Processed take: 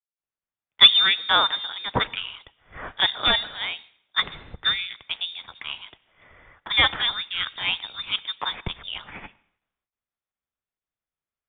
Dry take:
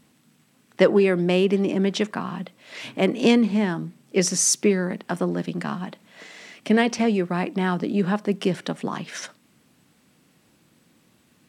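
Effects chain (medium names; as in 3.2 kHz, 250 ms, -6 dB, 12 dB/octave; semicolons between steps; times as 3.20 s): one-sided wavefolder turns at -9.5 dBFS; high-pass 450 Hz 24 dB/octave; gate with hold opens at -54 dBFS; treble shelf 2.6 kHz +9 dB; in parallel at -8 dB: saturation -19.5 dBFS, distortion -6 dB; on the sum: plate-style reverb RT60 1.2 s, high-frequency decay 0.75×, pre-delay 85 ms, DRR 19.5 dB; frequency inversion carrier 4 kHz; three bands expanded up and down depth 100%; trim -2.5 dB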